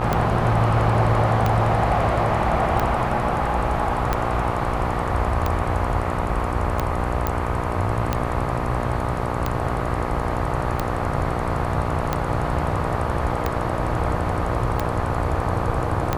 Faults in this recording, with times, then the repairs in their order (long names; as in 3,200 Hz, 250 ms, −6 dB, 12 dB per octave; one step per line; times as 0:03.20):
mains buzz 60 Hz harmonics 21 −27 dBFS
scratch tick 45 rpm −8 dBFS
0:07.27: click −7 dBFS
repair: click removal
hum removal 60 Hz, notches 21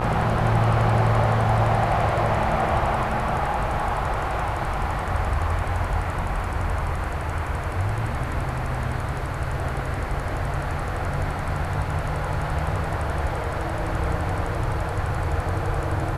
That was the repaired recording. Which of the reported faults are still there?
none of them is left